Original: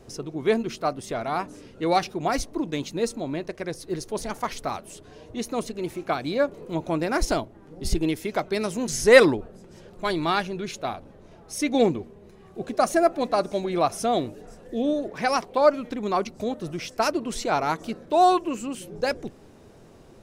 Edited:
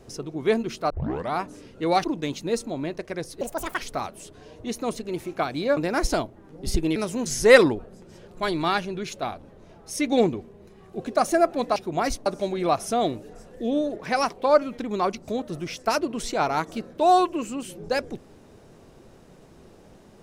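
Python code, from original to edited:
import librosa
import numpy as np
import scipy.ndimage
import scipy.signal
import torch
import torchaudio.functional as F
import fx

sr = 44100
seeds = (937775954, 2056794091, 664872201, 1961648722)

y = fx.edit(x, sr, fx.tape_start(start_s=0.9, length_s=0.41),
    fx.move(start_s=2.04, length_s=0.5, to_s=13.38),
    fx.speed_span(start_s=3.91, length_s=0.58, speed=1.53),
    fx.cut(start_s=6.47, length_s=0.48),
    fx.cut(start_s=8.14, length_s=0.44), tone=tone)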